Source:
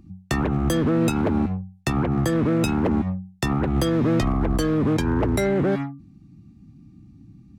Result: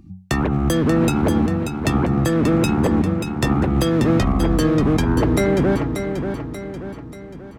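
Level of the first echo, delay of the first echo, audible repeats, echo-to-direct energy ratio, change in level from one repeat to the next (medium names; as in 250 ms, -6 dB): -7.0 dB, 585 ms, 5, -6.0 dB, -6.5 dB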